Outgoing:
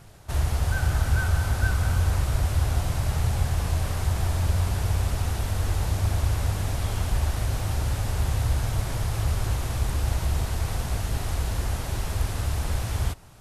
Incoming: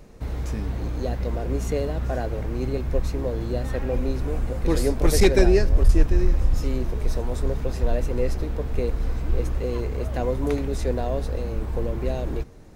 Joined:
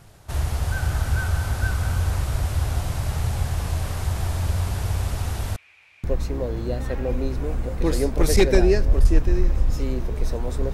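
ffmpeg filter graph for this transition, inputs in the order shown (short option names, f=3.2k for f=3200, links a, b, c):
-filter_complex "[0:a]asettb=1/sr,asplit=3[a][b][c];[a]atrim=end=5.564[d];[b]atrim=start=5.56:end=6.04,asetpts=PTS-STARTPTS,afade=t=in:d=0.004:c=qsin,afade=t=out:st=0.476:d=0.004:c=qsin,bandpass=f=2.4k:t=q:w=12:csg=0[e];[c]atrim=start=6.036[f];[d][e]acrossfade=d=0.004:c1=hsin:c2=qsin[g];[g][f]acrossfade=d=0.004:c1=qsin:c2=hsin,apad=whole_dur=10.73,atrim=end=10.73,atrim=end=6.042[h];[1:a]atrim=start=2.878:end=7.57[i];[h][i]acrossfade=d=0.004:c1=hsin:c2=hsin"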